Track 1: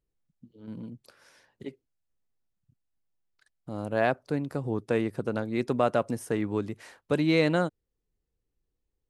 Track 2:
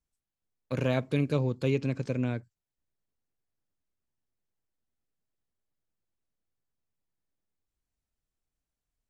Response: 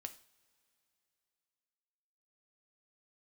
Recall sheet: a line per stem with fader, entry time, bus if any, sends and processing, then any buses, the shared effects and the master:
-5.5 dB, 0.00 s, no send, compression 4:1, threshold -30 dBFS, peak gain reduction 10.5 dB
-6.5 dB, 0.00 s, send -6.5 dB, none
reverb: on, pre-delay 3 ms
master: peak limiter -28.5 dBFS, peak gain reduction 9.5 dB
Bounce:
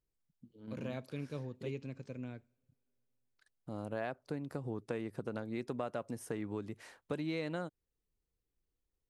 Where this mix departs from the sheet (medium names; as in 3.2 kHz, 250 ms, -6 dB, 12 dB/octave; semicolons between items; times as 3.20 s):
stem 2 -6.5 dB -> -16.5 dB; master: missing peak limiter -28.5 dBFS, peak gain reduction 9.5 dB